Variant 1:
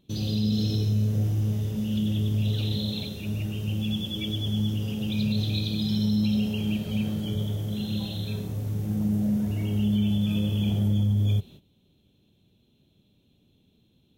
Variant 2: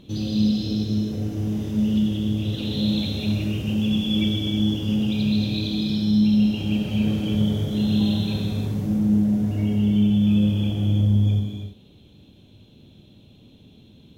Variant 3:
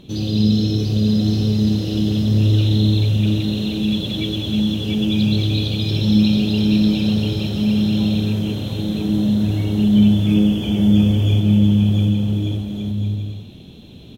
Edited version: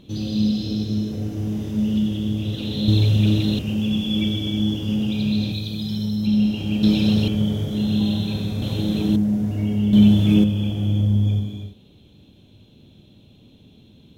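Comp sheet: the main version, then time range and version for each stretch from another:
2
2.88–3.59 from 3
5.52–6.27 from 1
6.83–7.28 from 3
8.62–9.16 from 3
9.93–10.44 from 3

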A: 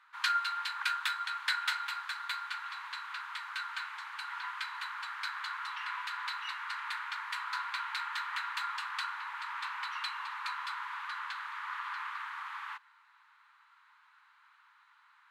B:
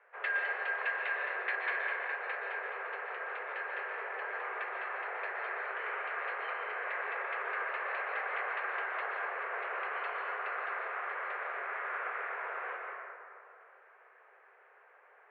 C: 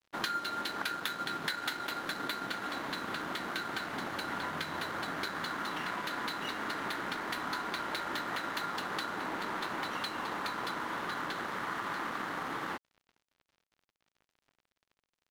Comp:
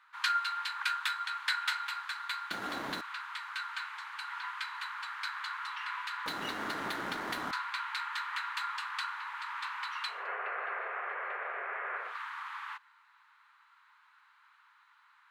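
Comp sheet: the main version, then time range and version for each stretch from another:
A
2.51–3.01 from C
6.26–7.51 from C
10.18–12.07 from B, crossfade 0.24 s

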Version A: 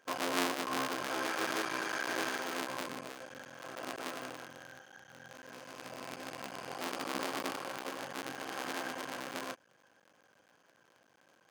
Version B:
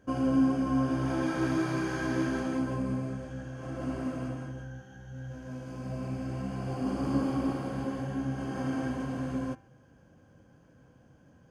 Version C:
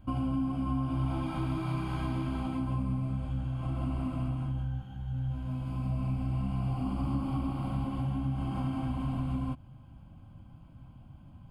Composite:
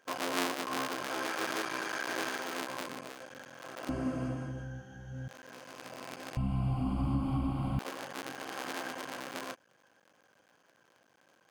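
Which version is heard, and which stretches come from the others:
A
3.89–5.28 from B
6.37–7.79 from C

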